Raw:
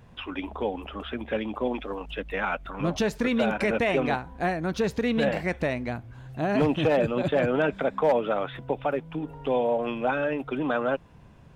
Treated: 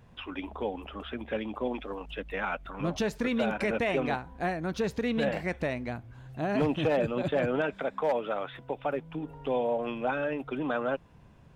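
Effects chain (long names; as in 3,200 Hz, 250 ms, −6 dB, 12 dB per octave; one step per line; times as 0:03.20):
0:07.61–0:08.85: low-shelf EQ 360 Hz −6 dB
level −4 dB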